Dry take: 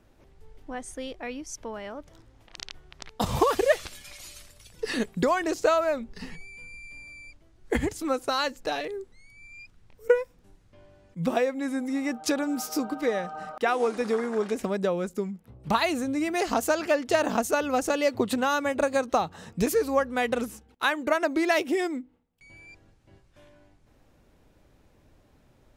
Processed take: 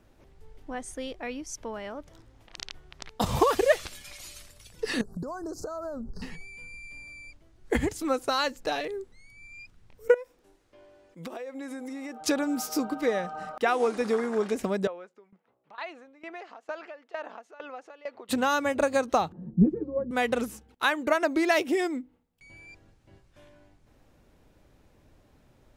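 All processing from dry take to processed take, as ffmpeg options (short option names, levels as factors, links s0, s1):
-filter_complex "[0:a]asettb=1/sr,asplit=3[s0][s1][s2];[s0]atrim=end=5.014[s3];[s1]atrim=start=5.01:end=6.22,asetpts=PTS-STARTPTS,afade=t=in:d=0.004:c=qsin,afade=t=out:st=1.206:d=0.004:c=qsin,lowshelf=f=270:g=12,acompressor=threshold=0.0251:ratio=12:attack=3.2:release=140:knee=1:detection=peak,asuperstop=centerf=2600:order=12:qfactor=0.92[s4];[s2]atrim=start=6.216[s5];[s3][s4]acrossfade=d=0.004:c1=hsin:c2=qsin[s6];[s6][s5]acrossfade=d=0.004:c1=qsin:c2=hsin,asettb=1/sr,asplit=3[s7][s8][s9];[s7]atrim=end=10.144[s10];[s8]atrim=start=10.14:end=12.21,asetpts=PTS-STARTPTS,afade=t=in:d=0.004:c=qsin,afade=t=out:st=2.066:d=0.004:c=qsin,lowshelf=f=240:t=q:w=1.5:g=-11.5,acompressor=threshold=0.02:ratio=16:attack=3.2:release=140:knee=1:detection=peak[s11];[s9]atrim=start=12.206[s12];[s10][s11]acrossfade=d=0.004:c1=hsin:c2=qsin[s13];[s13][s12]acrossfade=d=0.004:c1=qsin:c2=hsin,asettb=1/sr,asplit=3[s14][s15][s16];[s14]atrim=end=14.874[s17];[s15]atrim=start=14.87:end=18.29,asetpts=PTS-STARTPTS,afade=t=in:d=0.004:c=qsin,afade=t=out:st=3.416:d=0.004:c=qsin,acompressor=threshold=0.0355:ratio=3:attack=3.2:release=140:knee=1:detection=peak,highpass=560,lowpass=2500,aeval=exprs='val(0)*pow(10,-18*if(lt(mod(2.2*n/s,1),2*abs(2.2)/1000),1-mod(2.2*n/s,1)/(2*abs(2.2)/1000),(mod(2.2*n/s,1)-2*abs(2.2)/1000)/(1-2*abs(2.2)/1000))/20)':c=same[s18];[s16]atrim=start=18.286[s19];[s17][s18]acrossfade=d=0.004:c1=hsin:c2=qsin[s20];[s20][s19]acrossfade=d=0.004:c1=qsin:c2=hsin,asettb=1/sr,asplit=3[s21][s22][s23];[s21]atrim=end=19.324[s24];[s22]atrim=start=19.32:end=20.11,asetpts=PTS-STARTPTS,afade=t=in:d=0.004:c=qsin,afade=t=out:st=0.786:d=0.004:c=qsin,acompressor=mode=upward:threshold=0.00631:ratio=2.5:attack=3.2:release=140:knee=2.83:detection=peak,lowpass=f=270:t=q:w=1.9,aecho=1:1:5.6:0.99,atrim=end_sample=34839[s25];[s23]atrim=start=20.106[s26];[s24][s25]acrossfade=d=0.004:c1=hsin:c2=qsin[s27];[s27][s26]acrossfade=d=0.004:c1=qsin:c2=hsin"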